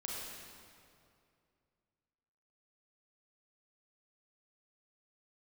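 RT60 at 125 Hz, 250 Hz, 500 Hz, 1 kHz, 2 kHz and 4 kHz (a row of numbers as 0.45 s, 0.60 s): 2.9 s, 2.6 s, 2.6 s, 2.4 s, 2.1 s, 1.8 s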